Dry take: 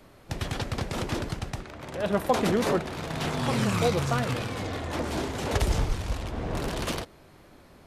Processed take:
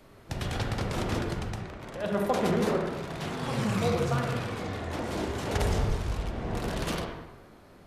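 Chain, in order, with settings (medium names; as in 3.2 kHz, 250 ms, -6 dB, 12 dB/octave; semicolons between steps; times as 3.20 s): gain riding within 3 dB 2 s; on a send: reverberation RT60 1.1 s, pre-delay 34 ms, DRR 1.5 dB; on the sum: trim -5 dB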